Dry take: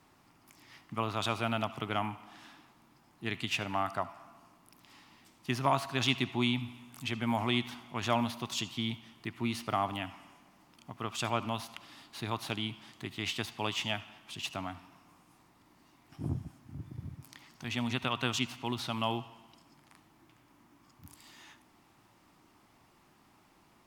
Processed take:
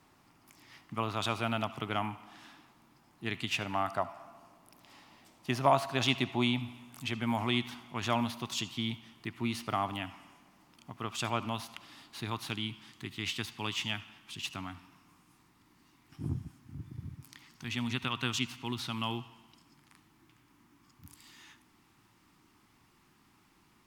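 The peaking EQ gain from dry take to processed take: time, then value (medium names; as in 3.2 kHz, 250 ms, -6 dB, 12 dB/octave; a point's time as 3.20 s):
peaking EQ 620 Hz 0.83 oct
3.69 s -1 dB
4.17 s +6 dB
6.64 s +6 dB
7.28 s -2.5 dB
12.11 s -2.5 dB
12.55 s -11 dB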